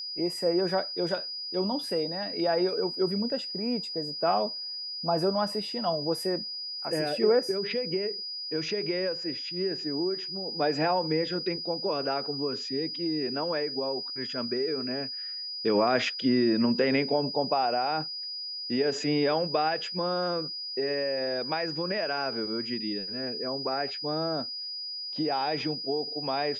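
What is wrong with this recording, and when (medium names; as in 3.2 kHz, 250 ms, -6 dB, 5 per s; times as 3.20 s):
whine 4.9 kHz -34 dBFS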